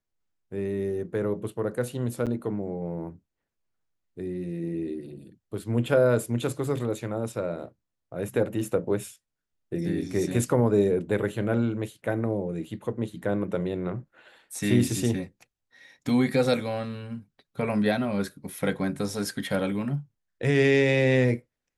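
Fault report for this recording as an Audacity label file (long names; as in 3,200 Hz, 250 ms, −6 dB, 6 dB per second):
2.260000	2.270000	drop-out 7.5 ms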